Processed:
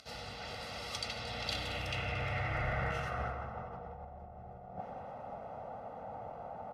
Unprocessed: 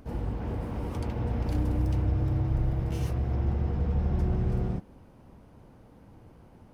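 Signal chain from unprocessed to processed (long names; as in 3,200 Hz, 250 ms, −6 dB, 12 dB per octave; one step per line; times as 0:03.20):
delay with a high-pass on its return 226 ms, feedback 81%, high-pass 2,000 Hz, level −16 dB
band-pass filter sweep 4,400 Hz → 800 Hz, 0:01.21–0:04.08
compressor whose output falls as the input rises −54 dBFS, ratio −0.5
low-shelf EQ 140 Hz +3 dB
comb filter 1.5 ms, depth 74%
convolution reverb RT60 0.90 s, pre-delay 79 ms, DRR 8.5 dB
level +13 dB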